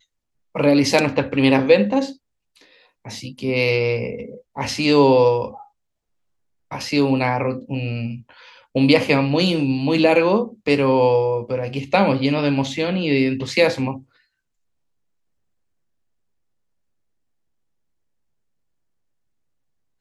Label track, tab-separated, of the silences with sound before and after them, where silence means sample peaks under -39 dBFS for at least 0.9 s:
5.630000	6.710000	silence